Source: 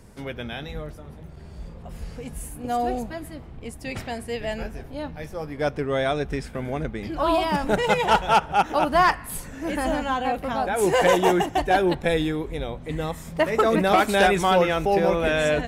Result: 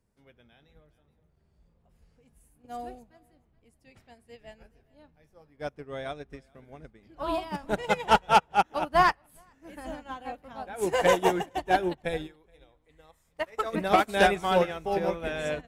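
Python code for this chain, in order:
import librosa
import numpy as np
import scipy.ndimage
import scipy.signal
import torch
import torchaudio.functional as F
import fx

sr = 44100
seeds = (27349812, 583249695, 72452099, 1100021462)

p1 = fx.peak_eq(x, sr, hz=190.0, db=-12.0, octaves=1.9, at=(12.26, 13.73), fade=0.02)
p2 = p1 + fx.echo_single(p1, sr, ms=423, db=-16.5, dry=0)
y = fx.upward_expand(p2, sr, threshold_db=-32.0, expansion=2.5)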